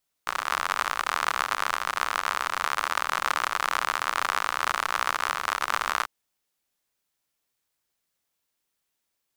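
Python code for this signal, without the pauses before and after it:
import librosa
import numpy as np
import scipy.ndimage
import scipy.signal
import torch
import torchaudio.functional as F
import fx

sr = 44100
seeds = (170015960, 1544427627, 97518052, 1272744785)

y = fx.rain(sr, seeds[0], length_s=5.79, drops_per_s=69.0, hz=1200.0, bed_db=-24.5)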